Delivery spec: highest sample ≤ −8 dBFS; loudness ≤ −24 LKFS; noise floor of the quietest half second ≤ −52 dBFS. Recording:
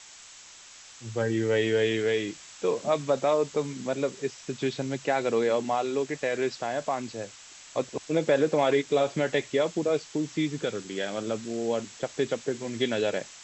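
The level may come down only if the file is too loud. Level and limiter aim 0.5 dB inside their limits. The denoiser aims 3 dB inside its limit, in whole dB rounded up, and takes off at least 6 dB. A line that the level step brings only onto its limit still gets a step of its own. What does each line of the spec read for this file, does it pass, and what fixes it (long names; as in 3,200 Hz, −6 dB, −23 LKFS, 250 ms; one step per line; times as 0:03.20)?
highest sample −12.0 dBFS: in spec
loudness −28.0 LKFS: in spec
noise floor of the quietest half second −49 dBFS: out of spec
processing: broadband denoise 6 dB, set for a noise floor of −49 dBFS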